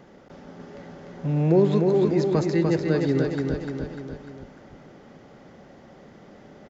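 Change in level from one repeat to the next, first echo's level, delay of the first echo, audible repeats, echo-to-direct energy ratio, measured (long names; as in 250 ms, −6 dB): −5.0 dB, −4.0 dB, 298 ms, 4, −2.5 dB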